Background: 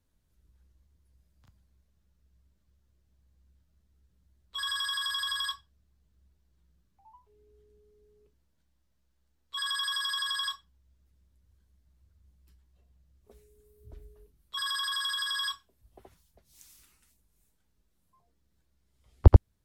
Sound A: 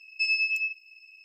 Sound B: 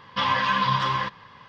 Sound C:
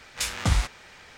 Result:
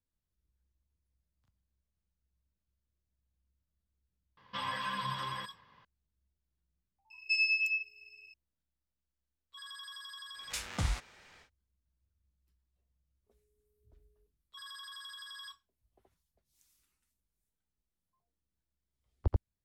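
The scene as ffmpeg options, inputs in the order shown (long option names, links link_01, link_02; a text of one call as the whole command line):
ffmpeg -i bed.wav -i cue0.wav -i cue1.wav -i cue2.wav -filter_complex "[0:a]volume=-15.5dB[link_01];[2:a]atrim=end=1.48,asetpts=PTS-STARTPTS,volume=-14.5dB,afade=type=in:duration=0.004:curve=hsin,afade=type=out:start_time=1.476:duration=0.004:curve=hsin,adelay=192717S[link_02];[1:a]atrim=end=1.24,asetpts=PTS-STARTPTS,volume=-3.5dB,afade=type=in:duration=0.004:curve=hsin,afade=type=out:start_time=1.236:duration=0.004:curve=hsin,adelay=7100[link_03];[3:a]atrim=end=1.17,asetpts=PTS-STARTPTS,volume=-10dB,afade=type=in:duration=0.1,afade=type=out:start_time=1.07:duration=0.1,adelay=10330[link_04];[link_01][link_02][link_03][link_04]amix=inputs=4:normalize=0" out.wav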